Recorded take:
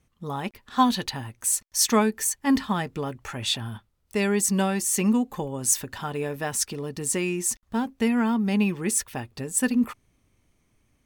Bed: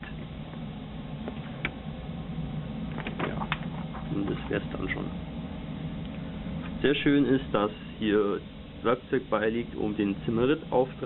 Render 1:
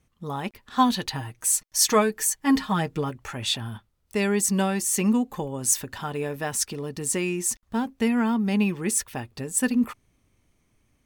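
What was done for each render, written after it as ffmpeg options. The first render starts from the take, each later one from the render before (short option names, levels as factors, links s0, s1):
-filter_complex "[0:a]asettb=1/sr,asplit=3[s0][s1][s2];[s0]atrim=end=1.104[s3];[s1]atrim=start=1.1:end=3.1,asetpts=PTS-STARTPTS,afade=t=in:d=0.004:c=qsin,afade=t=out:st=1.996:d=0.004:c=qsin,aecho=1:1:6.4:0.65,atrim=end_sample=88200[s4];[s2]atrim=start=3.096[s5];[s3][s4]acrossfade=d=0.004:c1=hsin:c2=qsin[s6];[s6][s5]acrossfade=d=0.004:c1=qsin:c2=hsin"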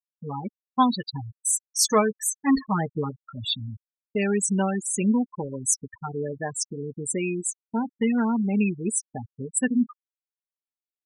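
-af "afftfilt=real='re*gte(hypot(re,im),0.1)':imag='im*gte(hypot(re,im),0.1)':win_size=1024:overlap=0.75,agate=range=0.0224:threshold=0.00794:ratio=3:detection=peak"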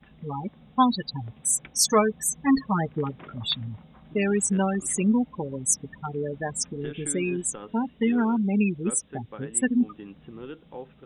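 -filter_complex "[1:a]volume=0.178[s0];[0:a][s0]amix=inputs=2:normalize=0"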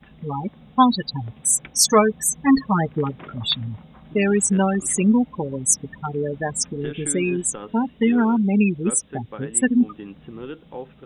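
-af "volume=1.78"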